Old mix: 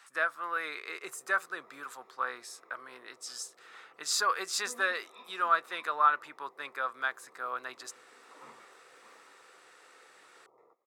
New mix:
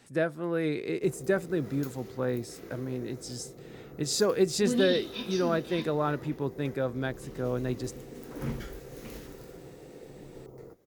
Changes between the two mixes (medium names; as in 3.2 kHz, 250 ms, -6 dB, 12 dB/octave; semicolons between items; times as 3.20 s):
background: remove boxcar filter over 29 samples; master: remove resonant high-pass 1.2 kHz, resonance Q 4.3